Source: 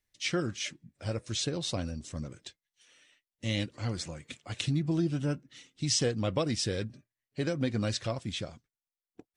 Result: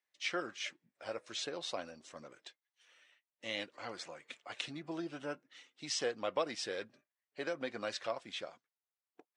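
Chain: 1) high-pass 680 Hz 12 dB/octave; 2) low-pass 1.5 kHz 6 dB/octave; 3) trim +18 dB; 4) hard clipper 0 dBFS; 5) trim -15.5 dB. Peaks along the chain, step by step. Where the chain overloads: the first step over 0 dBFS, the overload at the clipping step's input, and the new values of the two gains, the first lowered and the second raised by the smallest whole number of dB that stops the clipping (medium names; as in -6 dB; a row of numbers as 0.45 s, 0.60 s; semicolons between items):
-15.0 dBFS, -22.5 dBFS, -4.5 dBFS, -4.5 dBFS, -20.0 dBFS; nothing clips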